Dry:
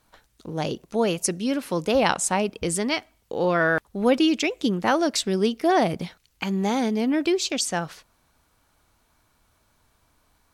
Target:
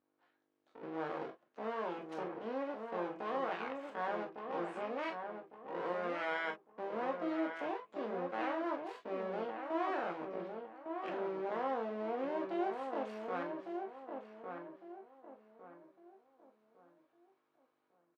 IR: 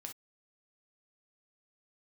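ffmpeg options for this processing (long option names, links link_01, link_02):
-filter_complex "[0:a]afwtdn=0.0501,acompressor=threshold=-33dB:ratio=2.5,alimiter=level_in=2dB:limit=-24dB:level=0:latency=1:release=13,volume=-2dB,dynaudnorm=framelen=110:gausssize=5:maxgain=9dB,atempo=0.58,aeval=exprs='clip(val(0),-1,0.0141)':channel_layout=same,aeval=exprs='val(0)+0.00141*(sin(2*PI*50*n/s)+sin(2*PI*2*50*n/s)/2+sin(2*PI*3*50*n/s)/3+sin(2*PI*4*50*n/s)/4+sin(2*PI*5*50*n/s)/5)':channel_layout=same,aeval=exprs='abs(val(0))':channel_layout=same,highpass=500,lowpass=2500,asplit=2[link_01][link_02];[link_02]adelay=1155,lowpass=frequency=1600:poles=1,volume=-5dB,asplit=2[link_03][link_04];[link_04]adelay=1155,lowpass=frequency=1600:poles=1,volume=0.35,asplit=2[link_05][link_06];[link_06]adelay=1155,lowpass=frequency=1600:poles=1,volume=0.35,asplit=2[link_07][link_08];[link_08]adelay=1155,lowpass=frequency=1600:poles=1,volume=0.35[link_09];[link_01][link_03][link_05][link_07][link_09]amix=inputs=5:normalize=0[link_10];[1:a]atrim=start_sample=2205,asetrate=57330,aresample=44100[link_11];[link_10][link_11]afir=irnorm=-1:irlink=0,volume=2dB"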